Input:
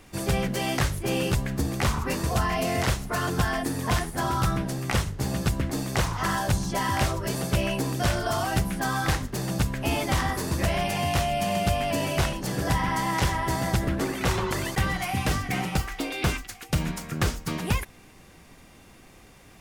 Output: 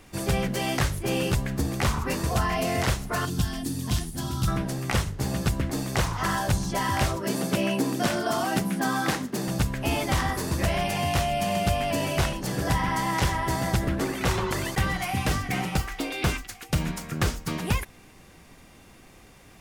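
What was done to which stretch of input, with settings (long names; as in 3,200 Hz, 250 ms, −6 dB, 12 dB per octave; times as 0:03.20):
0:03.25–0:04.48: flat-topped bell 960 Hz −12 dB 2.8 octaves
0:07.16–0:09.48: high-pass with resonance 220 Hz, resonance Q 1.9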